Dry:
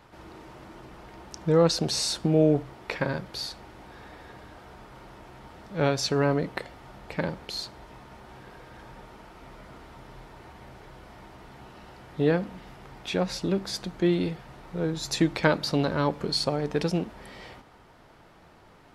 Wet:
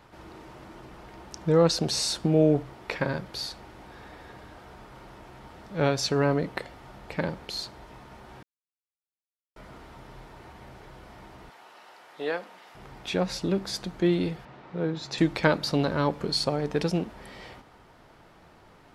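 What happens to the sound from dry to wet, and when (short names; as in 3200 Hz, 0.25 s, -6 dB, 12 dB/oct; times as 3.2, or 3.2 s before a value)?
8.43–9.56 mute
11.5–12.75 HPF 620 Hz
14.45–15.18 BPF 120–3800 Hz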